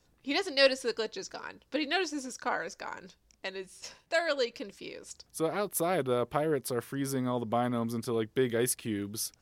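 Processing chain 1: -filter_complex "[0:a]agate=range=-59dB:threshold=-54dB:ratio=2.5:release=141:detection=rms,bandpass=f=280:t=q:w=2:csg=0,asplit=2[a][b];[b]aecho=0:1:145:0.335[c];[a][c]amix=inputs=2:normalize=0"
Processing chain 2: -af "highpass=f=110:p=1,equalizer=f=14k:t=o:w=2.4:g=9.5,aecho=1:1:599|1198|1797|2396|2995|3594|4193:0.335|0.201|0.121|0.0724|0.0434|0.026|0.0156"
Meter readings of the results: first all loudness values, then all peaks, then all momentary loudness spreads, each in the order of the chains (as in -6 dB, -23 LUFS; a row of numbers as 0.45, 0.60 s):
-38.0, -29.0 LUFS; -22.0, -8.0 dBFS; 16, 12 LU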